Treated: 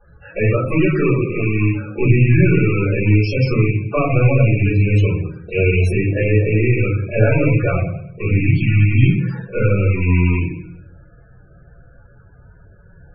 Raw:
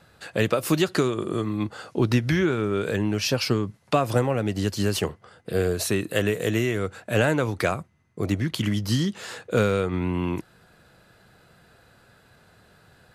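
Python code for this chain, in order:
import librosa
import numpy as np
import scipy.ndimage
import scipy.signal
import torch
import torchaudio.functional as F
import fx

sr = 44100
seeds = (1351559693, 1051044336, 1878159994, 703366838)

p1 = fx.rattle_buzz(x, sr, strikes_db=-30.0, level_db=-13.0)
p2 = fx.high_shelf(p1, sr, hz=3200.0, db=12.0, at=(5.08, 5.79))
p3 = fx.sample_hold(p2, sr, seeds[0], rate_hz=6700.0, jitter_pct=0)
p4 = p2 + (p3 * 10.0 ** (-10.5 / 20.0))
p5 = fx.comb_fb(p4, sr, f0_hz=100.0, decay_s=0.21, harmonics='all', damping=0.0, mix_pct=40, at=(9.47, 10.01))
p6 = p5 + fx.echo_feedback(p5, sr, ms=100, feedback_pct=49, wet_db=-15, dry=0)
p7 = fx.room_shoebox(p6, sr, seeds[1], volume_m3=62.0, walls='mixed', distance_m=3.5)
p8 = fx.spec_topn(p7, sr, count=32)
p9 = fx.low_shelf(p8, sr, hz=160.0, db=9.5)
y = p9 * 10.0 ** (-12.5 / 20.0)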